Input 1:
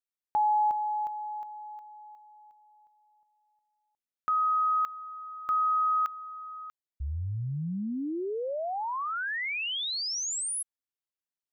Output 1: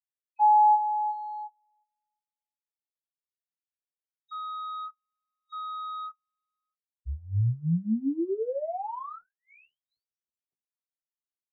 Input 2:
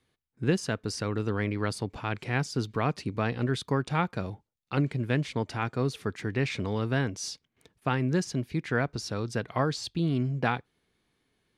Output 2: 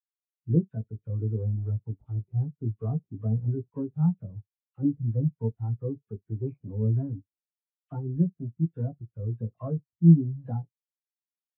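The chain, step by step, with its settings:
running median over 25 samples
in parallel at −7 dB: log-companded quantiser 2 bits
on the sum: high-frequency loss of the air 90 metres
all-pass dispersion lows, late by 58 ms, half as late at 1,600 Hz
on a send: ambience of single reflections 18 ms −4.5 dB, 60 ms −17.5 dB
on the sum: every bin expanded away from the loudest bin 2.5 to 1
level +2 dB

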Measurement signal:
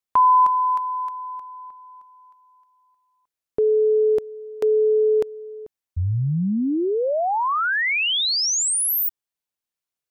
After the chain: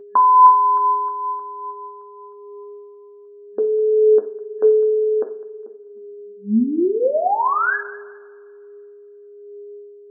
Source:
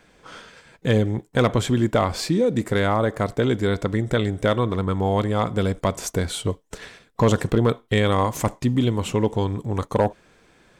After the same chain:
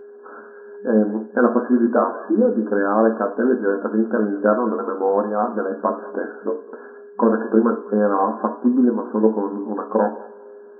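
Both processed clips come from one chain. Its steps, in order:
coupled-rooms reverb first 0.42 s, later 2 s, from −21 dB, DRR 5.5 dB
steady tone 410 Hz −39 dBFS
brick-wall band-pass 200–1,700 Hz
flanger 0.57 Hz, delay 7.7 ms, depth 2.2 ms, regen +49%
on a send: feedback echo with a high-pass in the loop 204 ms, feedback 26%, high-pass 710 Hz, level −18 dB
on the sum: level +6 dB

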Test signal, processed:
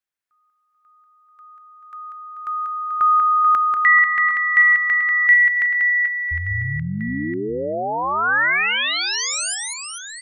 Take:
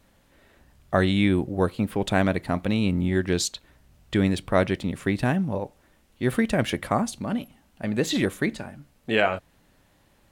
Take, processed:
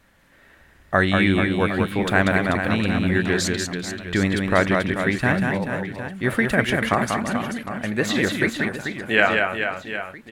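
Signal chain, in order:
parametric band 1,700 Hz +9 dB 1.1 octaves
on a send: reverse bouncing-ball delay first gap 190 ms, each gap 1.3×, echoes 5

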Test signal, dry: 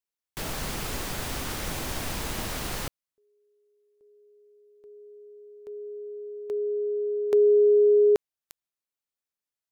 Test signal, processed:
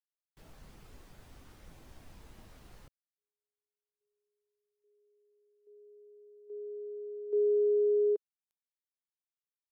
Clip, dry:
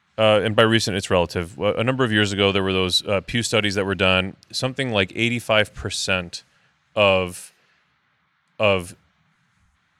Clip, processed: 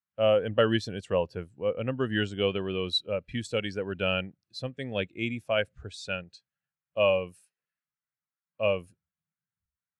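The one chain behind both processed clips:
every bin expanded away from the loudest bin 1.5 to 1
level −8.5 dB

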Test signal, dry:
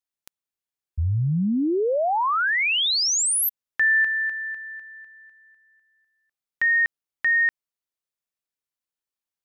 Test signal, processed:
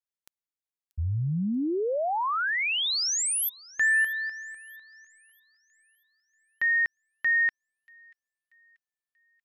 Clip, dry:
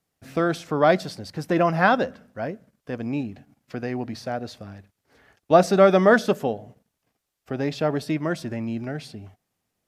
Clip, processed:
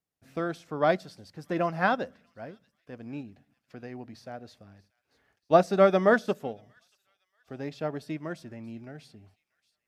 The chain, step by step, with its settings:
on a send: delay with a high-pass on its return 635 ms, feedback 43%, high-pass 2,600 Hz, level −18.5 dB
on the sum: expander for the loud parts 1.5 to 1, over −29 dBFS
level −3.5 dB

